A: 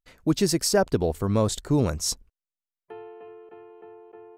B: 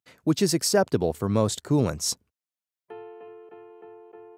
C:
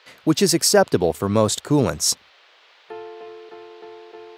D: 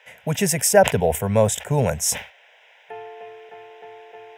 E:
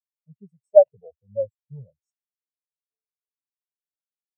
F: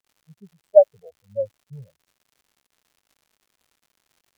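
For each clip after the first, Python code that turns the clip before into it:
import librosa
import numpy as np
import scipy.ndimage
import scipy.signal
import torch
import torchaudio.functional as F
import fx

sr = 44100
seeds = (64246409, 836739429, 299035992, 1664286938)

y1 = scipy.signal.sosfilt(scipy.signal.butter(4, 93.0, 'highpass', fs=sr, output='sos'), x)
y2 = fx.dmg_noise_band(y1, sr, seeds[0], low_hz=400.0, high_hz=4000.0, level_db=-61.0)
y2 = fx.low_shelf(y2, sr, hz=270.0, db=-6.5)
y2 = F.gain(torch.from_numpy(y2), 7.5).numpy()
y3 = fx.fixed_phaser(y2, sr, hz=1200.0, stages=6)
y3 = fx.sustainer(y3, sr, db_per_s=150.0)
y3 = F.gain(torch.from_numpy(y3), 3.5).numpy()
y4 = fx.spectral_expand(y3, sr, expansion=4.0)
y5 = fx.dmg_crackle(y4, sr, seeds[1], per_s=180.0, level_db=-49.0)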